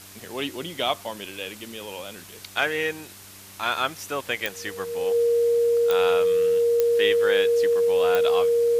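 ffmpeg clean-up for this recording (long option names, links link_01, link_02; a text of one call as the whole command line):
ffmpeg -i in.wav -af "adeclick=threshold=4,bandreject=frequency=97.7:width_type=h:width=4,bandreject=frequency=195.4:width_type=h:width=4,bandreject=frequency=293.1:width_type=h:width=4,bandreject=frequency=390.8:width_type=h:width=4,bandreject=frequency=470:width=30,afwtdn=0.0063" out.wav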